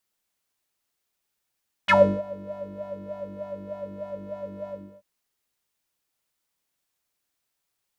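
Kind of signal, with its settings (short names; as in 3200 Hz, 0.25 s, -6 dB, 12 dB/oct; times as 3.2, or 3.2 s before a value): synth patch with filter wobble G2, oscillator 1 triangle, oscillator 2 square, interval +12 st, oscillator 2 level -3 dB, sub -14 dB, filter bandpass, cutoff 380 Hz, Q 8.2, filter envelope 3 oct, filter decay 0.06 s, filter sustain 15%, attack 16 ms, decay 0.32 s, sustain -23 dB, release 0.33 s, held 2.81 s, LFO 3.3 Hz, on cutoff 0.5 oct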